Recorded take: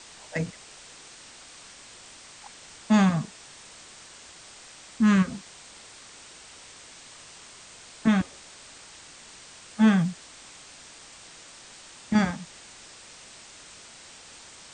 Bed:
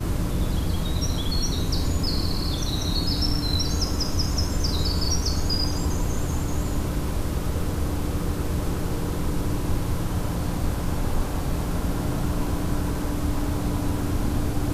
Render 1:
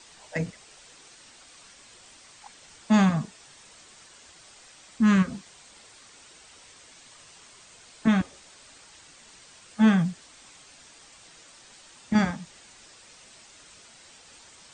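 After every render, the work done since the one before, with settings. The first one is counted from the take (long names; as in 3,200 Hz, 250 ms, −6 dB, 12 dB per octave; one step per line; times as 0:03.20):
broadband denoise 6 dB, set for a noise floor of −48 dBFS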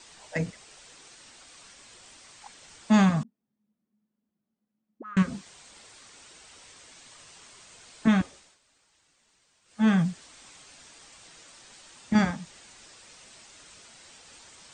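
0:03.23–0:05.17: envelope filter 200–1,300 Hz, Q 20, up, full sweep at −17 dBFS
0:08.24–0:09.99: duck −16 dB, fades 0.35 s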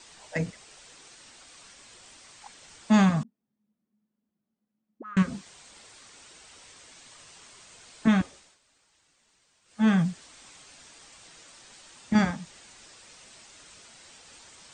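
no processing that can be heard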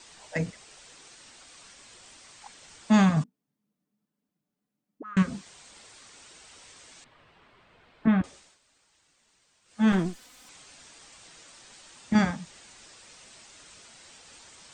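0:03.16–0:05.03: comb filter 6.8 ms
0:07.04–0:08.24: high-frequency loss of the air 470 metres
0:09.92–0:10.49: lower of the sound and its delayed copy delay 4 ms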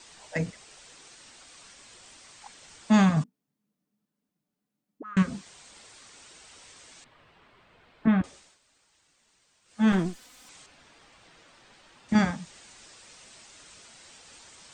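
0:10.66–0:12.09: parametric band 7,800 Hz −13.5 dB 1.6 octaves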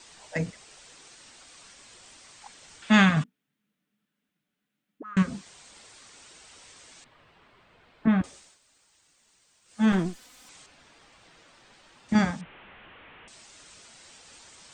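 0:02.82–0:05.03: flat-topped bell 2,200 Hz +10 dB
0:08.10–0:09.86: high-shelf EQ 6,800 Hz +7 dB
0:12.41–0:13.28: linear delta modulator 16 kbit/s, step −43.5 dBFS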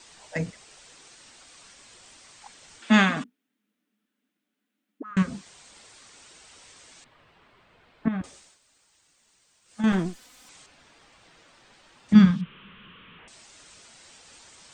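0:02.79–0:05.11: low shelf with overshoot 190 Hz −9 dB, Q 3
0:08.08–0:09.84: downward compressor 5 to 1, threshold −27 dBFS
0:12.13–0:13.19: drawn EQ curve 100 Hz 0 dB, 190 Hz +12 dB, 300 Hz −3 dB, 430 Hz 0 dB, 760 Hz −16 dB, 1,100 Hz +2 dB, 2,000 Hz −4 dB, 3,200 Hz +6 dB, 8,000 Hz −12 dB, 12,000 Hz +3 dB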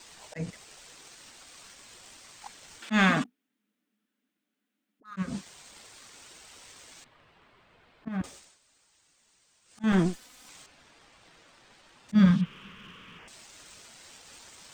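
volume swells 209 ms
leveller curve on the samples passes 1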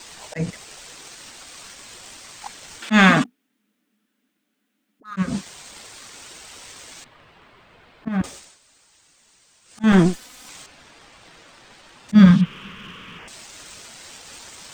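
level +9.5 dB
brickwall limiter −2 dBFS, peak gain reduction 1 dB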